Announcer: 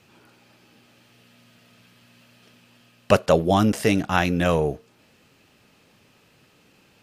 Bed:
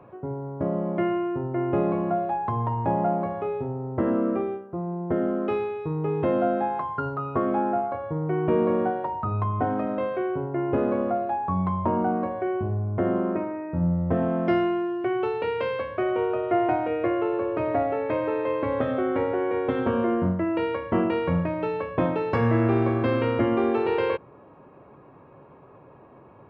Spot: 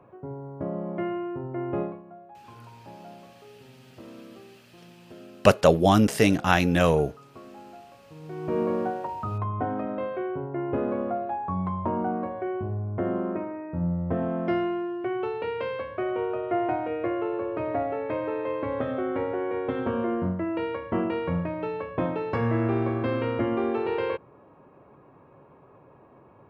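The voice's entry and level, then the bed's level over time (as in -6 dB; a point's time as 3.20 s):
2.35 s, 0.0 dB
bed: 1.82 s -5 dB
2.03 s -21.5 dB
8.02 s -21.5 dB
8.59 s -3.5 dB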